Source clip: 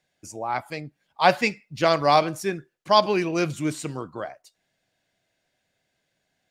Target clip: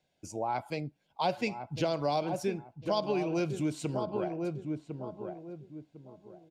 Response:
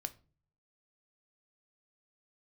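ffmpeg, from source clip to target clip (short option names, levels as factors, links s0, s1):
-filter_complex "[0:a]equalizer=f=1800:w=3.4:g=-12,acrossover=split=690|3000[s0][s1][s2];[s1]alimiter=limit=0.0841:level=0:latency=1[s3];[s0][s3][s2]amix=inputs=3:normalize=0,aemphasis=mode=reproduction:type=cd,bandreject=f=1200:w=5.8,asplit=2[s4][s5];[s5]adelay=1052,lowpass=f=900:p=1,volume=0.398,asplit=2[s6][s7];[s7]adelay=1052,lowpass=f=900:p=1,volume=0.3,asplit=2[s8][s9];[s9]adelay=1052,lowpass=f=900:p=1,volume=0.3,asplit=2[s10][s11];[s11]adelay=1052,lowpass=f=900:p=1,volume=0.3[s12];[s4][s6][s8][s10][s12]amix=inputs=5:normalize=0,acompressor=threshold=0.0355:ratio=3"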